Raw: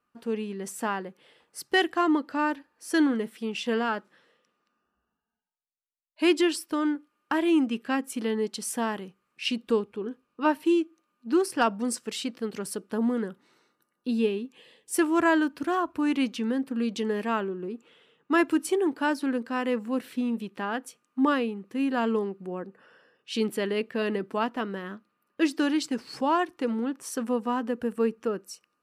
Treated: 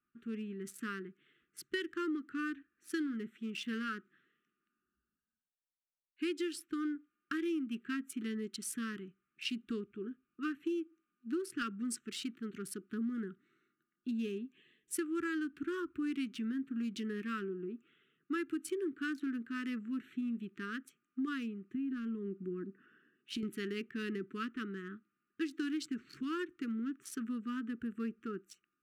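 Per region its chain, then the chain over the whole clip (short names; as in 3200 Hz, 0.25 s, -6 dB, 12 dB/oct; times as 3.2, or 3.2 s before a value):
21.74–23.43 HPF 110 Hz 6 dB/oct + bell 250 Hz +9 dB 1.3 oct + compressor 10:1, threshold -26 dBFS
whole clip: Wiener smoothing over 9 samples; elliptic band-stop 380–1300 Hz, stop band 40 dB; compressor, threshold -27 dBFS; gain -6 dB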